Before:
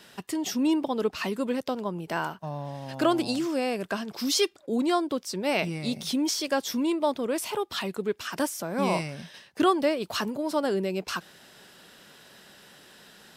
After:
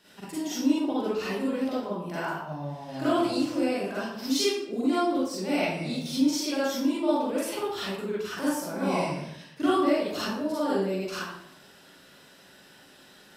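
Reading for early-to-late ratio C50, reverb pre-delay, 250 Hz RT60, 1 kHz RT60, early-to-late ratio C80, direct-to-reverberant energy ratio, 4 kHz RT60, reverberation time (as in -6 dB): -3.5 dB, 37 ms, 0.85 s, 0.70 s, 2.5 dB, -9.5 dB, 0.50 s, 0.75 s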